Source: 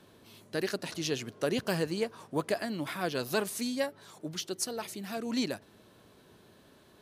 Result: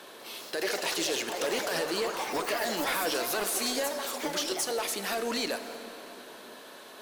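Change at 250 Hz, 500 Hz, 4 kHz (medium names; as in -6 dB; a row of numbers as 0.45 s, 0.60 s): -2.5 dB, +2.0 dB, +6.5 dB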